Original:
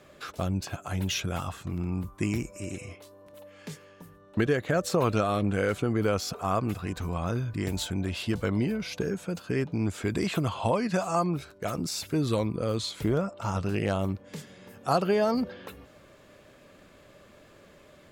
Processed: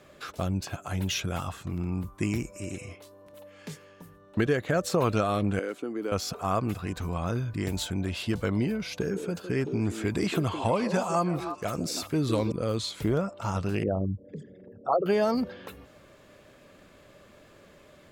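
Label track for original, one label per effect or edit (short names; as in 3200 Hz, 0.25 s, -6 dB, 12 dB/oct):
5.590000	6.120000	ladder high-pass 240 Hz, resonance 45%
8.960000	12.520000	delay with a stepping band-pass 0.16 s, band-pass from 370 Hz, each repeat 1.4 oct, level -4.5 dB
13.830000	15.060000	formant sharpening exponent 3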